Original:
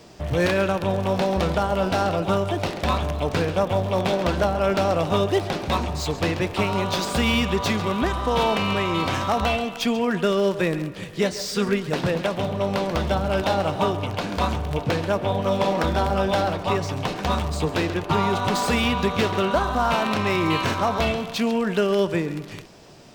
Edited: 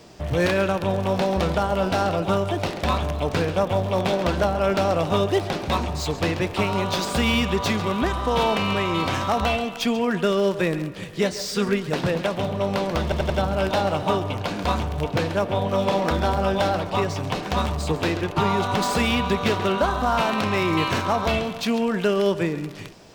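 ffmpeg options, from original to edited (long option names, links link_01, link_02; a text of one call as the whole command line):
ffmpeg -i in.wav -filter_complex "[0:a]asplit=4[link_01][link_02][link_03][link_04];[link_01]atrim=end=13.122[link_05];[link_02]atrim=start=13.028:end=13.122[link_06];[link_03]atrim=start=13.028:end=13.122[link_07];[link_04]atrim=start=13.028[link_08];[link_05][link_06]acrossfade=duration=0.004:curve1=hsin:curve2=hsin[link_09];[link_09][link_07]acrossfade=duration=0.004:curve1=hsin:curve2=hsin[link_10];[link_10][link_08]acrossfade=duration=0.004:curve1=hsin:curve2=hsin" out.wav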